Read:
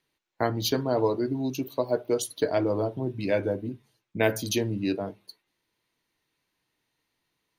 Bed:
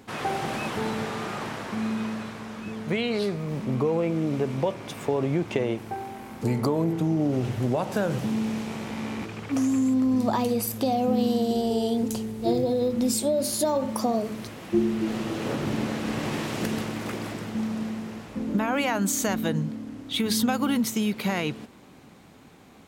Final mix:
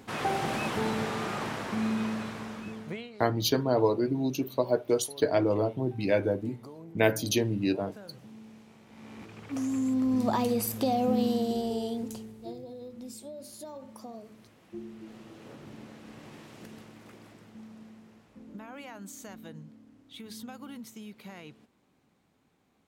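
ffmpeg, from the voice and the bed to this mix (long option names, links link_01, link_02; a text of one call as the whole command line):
ffmpeg -i stem1.wav -i stem2.wav -filter_complex "[0:a]adelay=2800,volume=0dB[link_01];[1:a]volume=18.5dB,afade=type=out:start_time=2.42:duration=0.69:silence=0.0891251,afade=type=in:start_time=8.87:duration=1.47:silence=0.105925,afade=type=out:start_time=11.1:duration=1.47:silence=0.149624[link_02];[link_01][link_02]amix=inputs=2:normalize=0" out.wav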